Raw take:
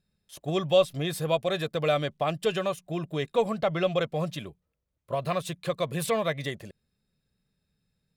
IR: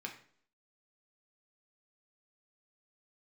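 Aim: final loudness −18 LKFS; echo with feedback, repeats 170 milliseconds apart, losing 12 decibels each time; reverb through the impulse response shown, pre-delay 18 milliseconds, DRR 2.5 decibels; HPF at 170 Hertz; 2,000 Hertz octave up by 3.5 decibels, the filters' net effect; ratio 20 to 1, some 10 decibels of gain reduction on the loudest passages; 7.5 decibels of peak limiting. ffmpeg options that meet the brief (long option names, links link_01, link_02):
-filter_complex "[0:a]highpass=170,equalizer=frequency=2000:width_type=o:gain=4.5,acompressor=threshold=-25dB:ratio=20,alimiter=limit=-23.5dB:level=0:latency=1,aecho=1:1:170|340|510:0.251|0.0628|0.0157,asplit=2[link_01][link_02];[1:a]atrim=start_sample=2205,adelay=18[link_03];[link_02][link_03]afir=irnorm=-1:irlink=0,volume=-2dB[link_04];[link_01][link_04]amix=inputs=2:normalize=0,volume=15.5dB"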